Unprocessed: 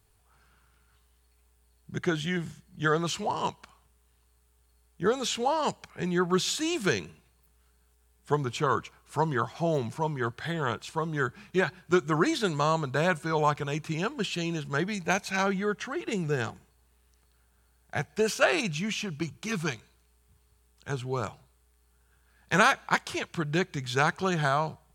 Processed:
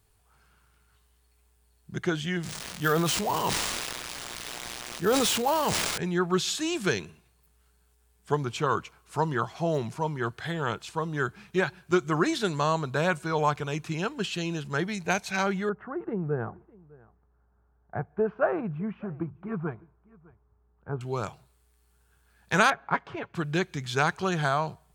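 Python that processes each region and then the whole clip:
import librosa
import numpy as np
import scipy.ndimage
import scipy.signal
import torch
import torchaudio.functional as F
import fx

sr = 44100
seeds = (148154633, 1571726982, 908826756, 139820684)

y = fx.chain(x, sr, fx.crossing_spikes(level_db=-30.0),
    fx.resample_bad(factor=3, down='none', up='hold'),
    fx.sustainer(db_per_s=23.0), at=(2.43, 5.98))
y = fx.chain(y, sr, fx.lowpass(hz=1300.0, slope=24),
    fx.echo_single(ms=605, db=-24.0), at=(15.69, 21.01))
y = fx.chain(y, sr, fx.block_float(bits=7),
    fx.lowpass(hz=1500.0, slope=12),
    fx.comb(ms=7.2, depth=0.49), at=(22.7, 23.35))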